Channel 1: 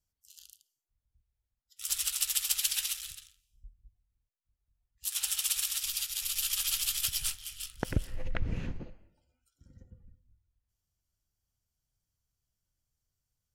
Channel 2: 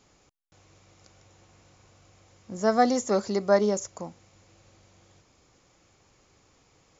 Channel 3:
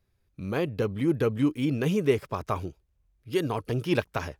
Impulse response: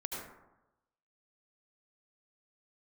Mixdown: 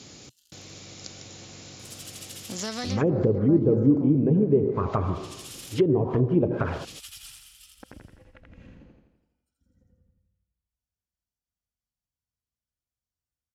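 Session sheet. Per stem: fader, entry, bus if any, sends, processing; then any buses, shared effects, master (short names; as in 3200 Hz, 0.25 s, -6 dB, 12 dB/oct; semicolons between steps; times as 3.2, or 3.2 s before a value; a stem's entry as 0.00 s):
-5.5 dB, 0.00 s, bus A, no send, echo send -6 dB, high shelf 4300 Hz -11.5 dB; compressor, threshold -33 dBFS, peak gain reduction 11 dB
-2.5 dB, 0.00 s, no bus, no send, no echo send, graphic EQ 125/250/1000/4000 Hz +10/+9/-6/+7 dB; compressor, threshold -22 dBFS, peak gain reduction 9.5 dB; spectral compressor 2:1
+0.5 dB, 2.45 s, bus A, send -15.5 dB, no echo send, high shelf 3800 Hz -11 dB; de-hum 118 Hz, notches 37; AGC gain up to 15 dB
bus A: 0.0 dB, envelope flanger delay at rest 4.1 ms, full sweep at -11.5 dBFS; compressor 2:1, threshold -26 dBFS, peak gain reduction 10.5 dB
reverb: on, RT60 0.95 s, pre-delay 67 ms
echo: feedback echo 84 ms, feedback 55%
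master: treble ducked by the level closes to 550 Hz, closed at -17.5 dBFS; HPF 57 Hz; high shelf 5400 Hz +7 dB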